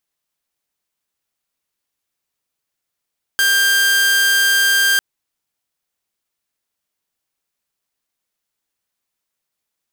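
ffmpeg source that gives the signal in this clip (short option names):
-f lavfi -i "aevalsrc='0.335*(2*mod(1590*t,1)-1)':d=1.6:s=44100"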